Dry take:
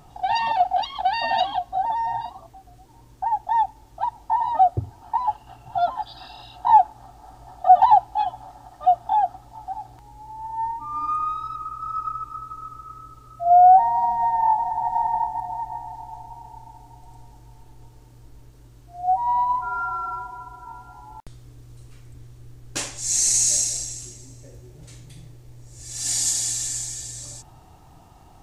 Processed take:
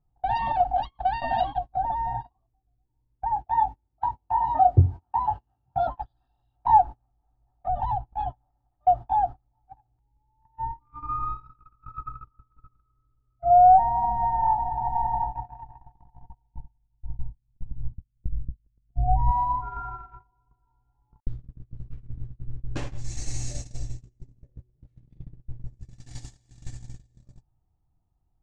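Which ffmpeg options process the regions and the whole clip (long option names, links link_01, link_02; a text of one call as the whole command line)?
ffmpeg -i in.wav -filter_complex "[0:a]asettb=1/sr,asplit=3[link_01][link_02][link_03];[link_01]atrim=end=3.344[link_04];[link_02]atrim=start=3.34:end=5.87,asetpts=PTS-STARTPTS,afade=type=in:duration=0.004:curve=qsin,afade=type=out:start_time=2.526:duration=0.004:curve=qsin,highpass=frequency=60:width=0.5412,highpass=frequency=60:width=1.3066,asplit=2[link_05][link_06];[link_06]adelay=22,volume=-3.5dB[link_07];[link_05][link_07]amix=inputs=2:normalize=0,atrim=end_sample=111573[link_08];[link_03]atrim=start=5.866[link_09];[link_04][link_08]acrossfade=duration=0.004:curve1=hsin:curve2=qsin[link_10];[link_10][link_09]acrossfade=duration=0.004:curve1=qsin:curve2=hsin,asettb=1/sr,asplit=3[link_11][link_12][link_13];[link_11]atrim=end=7.634[link_14];[link_12]atrim=start=7.63:end=8.32,asetpts=PTS-STARTPTS,afade=type=in:duration=0.004:curve=qsin,afade=type=out:start_time=0.686:duration=0.004:curve=qsin,bass=frequency=250:gain=3,treble=frequency=4000:gain=-7,acrossover=split=200|3000[link_15][link_16][link_17];[link_16]acompressor=threshold=-21dB:ratio=10:attack=3.2:release=140:knee=2.83:detection=peak[link_18];[link_15][link_18][link_17]amix=inputs=3:normalize=0[link_19];[link_13]atrim=start=8.316[link_20];[link_14][link_19]acrossfade=duration=0.004:curve1=hsin:curve2=qsin[link_21];[link_21][link_20]acrossfade=duration=0.004:curve1=qsin:curve2=hsin,asettb=1/sr,asplit=3[link_22][link_23][link_24];[link_22]atrim=end=16.324[link_25];[link_23]atrim=start=16.32:end=19.31,asetpts=PTS-STARTPTS,afade=type=in:duration=0.004:curve=qsin,afade=type=out:start_time=2.986:duration=0.004:curve=qsin,agate=range=-33dB:threshold=-38dB:ratio=3:release=100:detection=peak,asubboost=boost=7.5:cutoff=210,aeval=exprs='val(0)+0.00141*(sin(2*PI*50*n/s)+sin(2*PI*2*50*n/s)/2+sin(2*PI*3*50*n/s)/3+sin(2*PI*4*50*n/s)/4+sin(2*PI*5*50*n/s)/5)':channel_layout=same[link_26];[link_24]atrim=start=19.306[link_27];[link_25][link_26]acrossfade=duration=0.004:curve1=hsin:curve2=qsin[link_28];[link_28][link_27]acrossfade=duration=0.004:curve1=qsin:curve2=hsin,aemphasis=mode=reproduction:type=riaa,agate=range=-32dB:threshold=-25dB:ratio=16:detection=peak,highshelf=frequency=5500:gain=-11,volume=-3.5dB" out.wav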